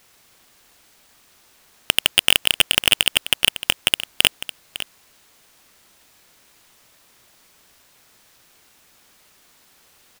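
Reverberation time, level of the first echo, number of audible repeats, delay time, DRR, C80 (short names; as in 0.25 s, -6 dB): none, -13.0 dB, 1, 0.554 s, none, none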